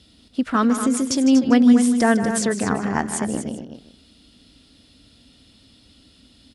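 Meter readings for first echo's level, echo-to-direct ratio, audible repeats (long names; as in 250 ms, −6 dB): −11.0 dB, −6.5 dB, 3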